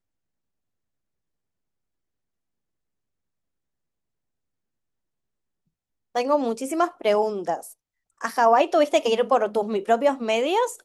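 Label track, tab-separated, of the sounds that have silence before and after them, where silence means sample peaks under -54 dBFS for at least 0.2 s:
6.150000	7.740000	sound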